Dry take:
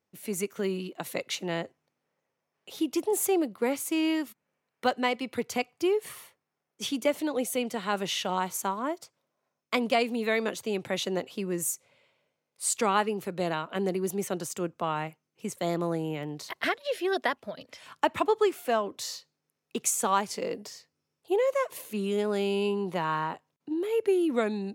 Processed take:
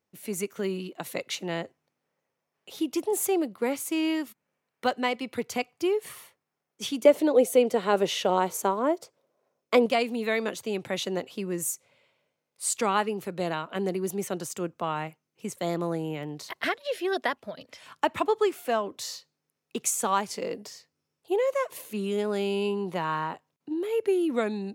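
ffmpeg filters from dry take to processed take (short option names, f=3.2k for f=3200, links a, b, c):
-filter_complex "[0:a]asettb=1/sr,asplit=3[a][b][c];[a]atrim=end=7.054[d];[b]atrim=start=7.05:end=9.86,asetpts=PTS-STARTPTS,afade=t=in:d=0.004:c=qsin,afade=t=out:st=2.806:d=0.004:c=qsin,equalizer=f=470:w=1.1:g=11.5[e];[c]atrim=start=9.856[f];[d][e]acrossfade=d=0.004:c1=hsin:c2=qsin[g];[g][f]acrossfade=d=0.004:c1=qsin:c2=hsin"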